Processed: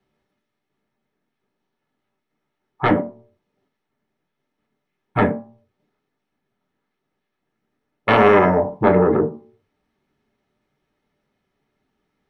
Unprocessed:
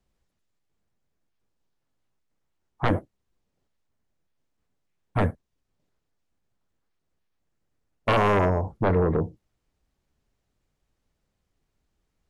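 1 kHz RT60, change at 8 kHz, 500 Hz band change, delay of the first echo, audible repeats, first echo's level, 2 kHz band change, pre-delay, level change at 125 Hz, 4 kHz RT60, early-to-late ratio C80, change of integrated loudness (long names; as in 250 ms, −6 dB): 0.45 s, can't be measured, +9.0 dB, no echo audible, no echo audible, no echo audible, +8.5 dB, 3 ms, +1.0 dB, 0.20 s, 18.5 dB, +7.5 dB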